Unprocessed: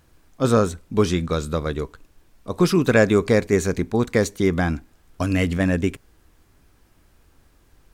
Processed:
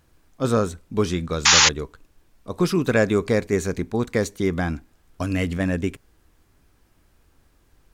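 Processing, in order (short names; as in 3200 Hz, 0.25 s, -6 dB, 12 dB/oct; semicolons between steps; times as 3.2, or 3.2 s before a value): painted sound noise, 1.45–1.69, 770–7200 Hz -11 dBFS; gain -3 dB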